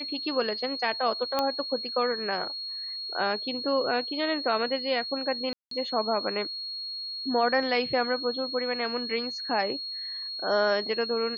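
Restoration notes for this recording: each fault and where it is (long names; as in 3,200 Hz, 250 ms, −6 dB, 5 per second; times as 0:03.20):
whistle 4,300 Hz −33 dBFS
0:01.39: click −12 dBFS
0:05.53–0:05.71: drop-out 183 ms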